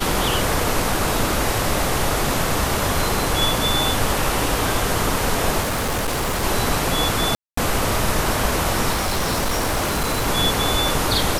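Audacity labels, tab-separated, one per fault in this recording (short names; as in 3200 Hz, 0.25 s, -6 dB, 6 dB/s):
5.610000	6.440000	clipped -19 dBFS
7.350000	7.570000	gap 0.224 s
8.920000	10.280000	clipped -17 dBFS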